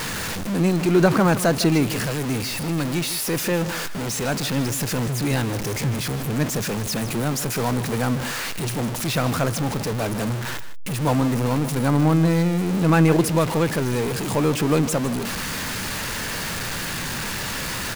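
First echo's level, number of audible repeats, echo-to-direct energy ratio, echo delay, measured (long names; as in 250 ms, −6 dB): −14.0 dB, 1, −14.0 dB, 155 ms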